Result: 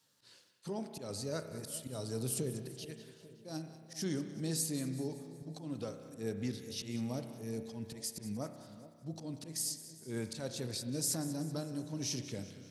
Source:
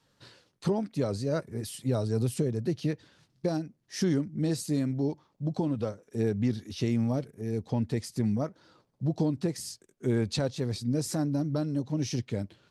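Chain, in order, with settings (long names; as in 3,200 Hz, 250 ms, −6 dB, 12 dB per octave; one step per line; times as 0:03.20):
high-pass filter 94 Hz
first-order pre-emphasis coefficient 0.8
volume swells 130 ms
on a send: echo with a time of its own for lows and highs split 880 Hz, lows 421 ms, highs 189 ms, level −15 dB
on the sum: spring reverb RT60 1.8 s, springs 31 ms, chirp 80 ms, DRR 8 dB
level +4 dB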